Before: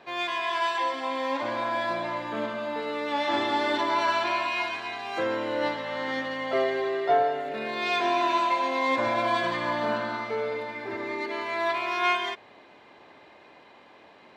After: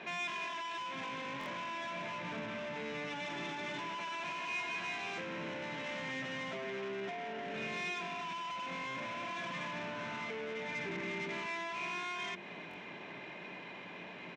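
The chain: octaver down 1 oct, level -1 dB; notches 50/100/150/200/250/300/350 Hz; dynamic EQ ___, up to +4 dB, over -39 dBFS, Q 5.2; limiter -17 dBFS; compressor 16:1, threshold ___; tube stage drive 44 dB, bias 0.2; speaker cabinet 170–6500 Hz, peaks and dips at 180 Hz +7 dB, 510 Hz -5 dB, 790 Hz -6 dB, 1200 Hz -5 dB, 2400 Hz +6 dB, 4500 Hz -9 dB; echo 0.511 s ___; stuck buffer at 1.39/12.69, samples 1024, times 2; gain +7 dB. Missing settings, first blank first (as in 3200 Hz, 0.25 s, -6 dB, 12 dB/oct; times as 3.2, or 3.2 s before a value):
1000 Hz, -34 dBFS, -23.5 dB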